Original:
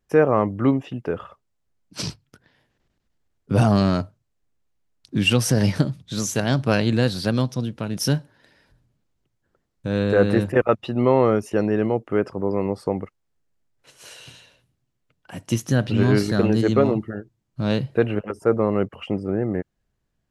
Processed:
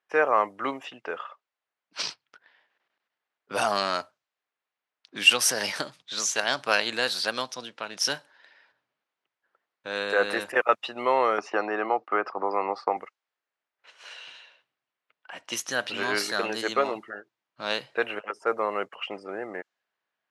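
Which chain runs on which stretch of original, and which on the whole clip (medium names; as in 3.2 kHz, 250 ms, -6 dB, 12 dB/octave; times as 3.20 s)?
11.38–12.97 s: expander -40 dBFS + cabinet simulation 110–4700 Hz, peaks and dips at 320 Hz +4 dB, 770 Hz +8 dB, 1.2 kHz +9 dB, 3.2 kHz -7 dB + three bands compressed up and down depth 70%
whole clip: level-controlled noise filter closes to 2.9 kHz, open at -16 dBFS; high-pass 900 Hz 12 dB/octave; trim +3.5 dB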